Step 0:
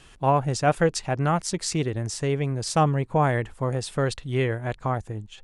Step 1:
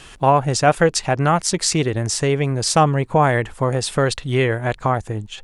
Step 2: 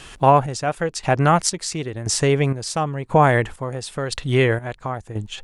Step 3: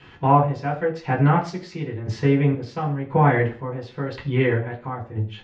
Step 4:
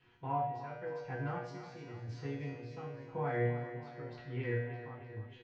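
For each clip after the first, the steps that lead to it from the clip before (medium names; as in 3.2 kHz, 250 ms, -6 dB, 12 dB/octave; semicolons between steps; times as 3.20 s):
bass shelf 370 Hz -4.5 dB; in parallel at +0.5 dB: compression, threshold -29 dBFS, peak gain reduction 12 dB; on the sum: trim +5 dB
square tremolo 0.97 Hz, depth 65%, duty 45%; trim +1 dB
distance through air 250 m; reverberation RT60 0.40 s, pre-delay 3 ms, DRR -5 dB; trim -17.5 dB
feedback comb 120 Hz, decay 0.84 s, harmonics all, mix 90%; feedback delay 306 ms, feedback 59%, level -11.5 dB; trim -5.5 dB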